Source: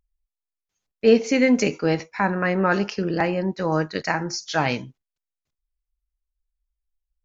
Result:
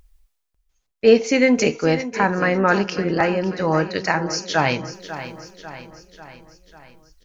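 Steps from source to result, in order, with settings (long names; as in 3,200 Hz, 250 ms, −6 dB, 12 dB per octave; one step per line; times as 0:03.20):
parametric band 220 Hz −3.5 dB 0.81 octaves
reversed playback
upward compression, threshold −40 dBFS
reversed playback
repeating echo 545 ms, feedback 55%, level −13 dB
level +3.5 dB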